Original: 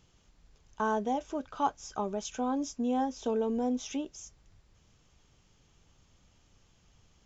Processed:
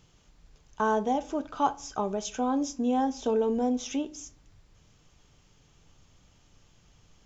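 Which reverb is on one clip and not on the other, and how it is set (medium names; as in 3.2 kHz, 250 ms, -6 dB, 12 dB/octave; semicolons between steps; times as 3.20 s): simulated room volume 500 m³, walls furnished, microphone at 0.41 m; trim +3.5 dB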